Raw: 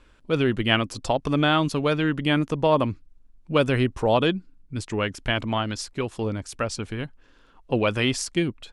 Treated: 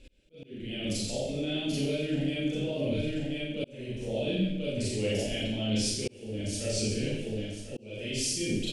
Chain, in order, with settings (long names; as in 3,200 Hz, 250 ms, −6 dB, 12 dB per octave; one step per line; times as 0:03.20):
repeating echo 1,040 ms, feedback 26%, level −16 dB
brickwall limiter −16.5 dBFS, peak gain reduction 12 dB
reversed playback
downward compressor 12 to 1, threshold −35 dBFS, peak gain reduction 14.5 dB
reversed playback
drawn EQ curve 580 Hz 0 dB, 1,100 Hz −28 dB, 2,500 Hz +1 dB
four-comb reverb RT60 0.86 s, combs from 29 ms, DRR −9 dB
volume swells 537 ms